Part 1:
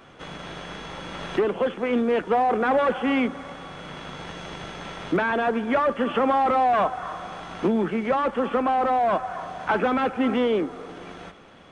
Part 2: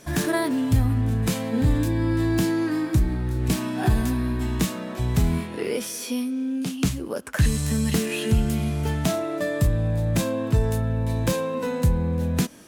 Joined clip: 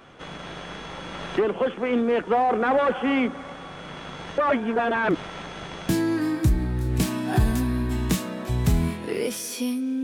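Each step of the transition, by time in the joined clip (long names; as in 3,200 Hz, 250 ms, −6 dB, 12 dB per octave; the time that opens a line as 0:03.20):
part 1
0:04.38–0:05.89: reverse
0:05.89: continue with part 2 from 0:02.39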